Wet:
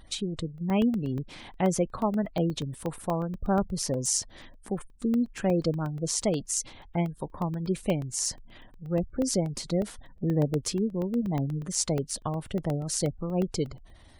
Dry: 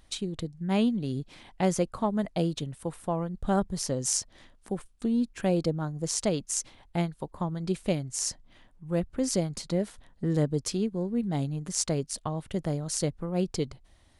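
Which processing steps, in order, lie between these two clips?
companding laws mixed up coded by mu; spectral gate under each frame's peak -30 dB strong; crackling interface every 0.12 s, samples 64, zero, from 0.58 s

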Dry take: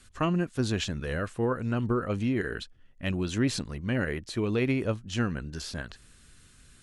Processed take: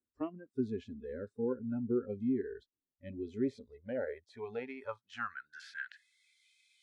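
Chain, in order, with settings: band-pass sweep 330 Hz -> 2.5 kHz, 3.08–6.50 s; spectral noise reduction 23 dB; trim +1 dB

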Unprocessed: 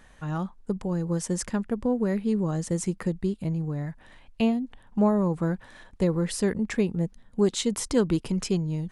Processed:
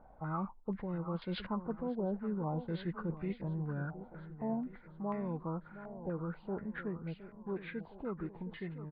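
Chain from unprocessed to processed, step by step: knee-point frequency compression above 1 kHz 1.5:1; Doppler pass-by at 1.87 s, 8 m/s, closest 4.3 m; reverse; compression 16:1, threshold -39 dBFS, peak gain reduction 19.5 dB; reverse; feedback delay 716 ms, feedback 52%, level -12.5 dB; step-sequenced low-pass 4.1 Hz 760–2200 Hz; trim +5 dB

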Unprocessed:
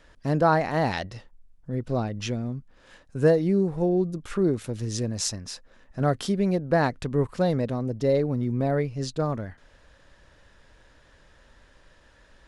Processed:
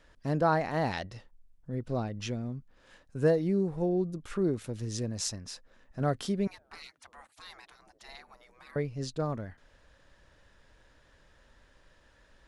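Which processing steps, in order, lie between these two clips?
6.47–8.76 s: spectral gate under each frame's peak -25 dB weak; trim -5.5 dB

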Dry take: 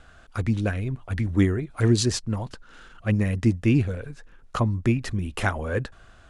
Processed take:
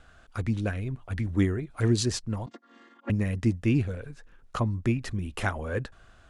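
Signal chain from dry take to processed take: 2.46–3.10 s: vocoder on a held chord minor triad, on A#3; trim -4 dB

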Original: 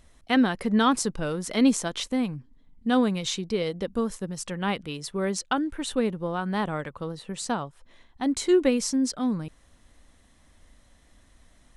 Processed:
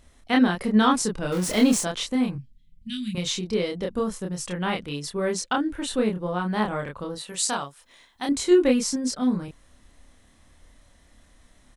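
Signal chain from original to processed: 1.32–1.81 s: jump at every zero crossing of -30 dBFS; 2.35–3.15 s: Chebyshev band-stop 180–2500 Hz, order 3; 7.15–8.29 s: tilt EQ +3 dB/octave; doubling 28 ms -2.5 dB

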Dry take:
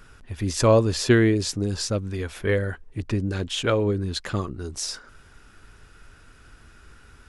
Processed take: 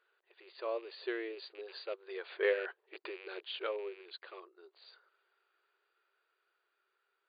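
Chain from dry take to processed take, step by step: rattle on loud lows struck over -27 dBFS, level -28 dBFS; Doppler pass-by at 2.61 s, 7 m/s, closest 2.9 m; brick-wall FIR band-pass 340–4800 Hz; trim -5.5 dB

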